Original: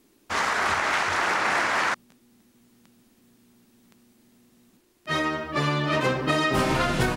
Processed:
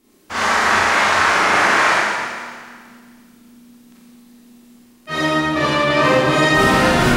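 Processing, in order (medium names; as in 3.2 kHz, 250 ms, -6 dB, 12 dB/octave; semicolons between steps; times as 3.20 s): Schroeder reverb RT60 1.8 s, combs from 29 ms, DRR -9 dB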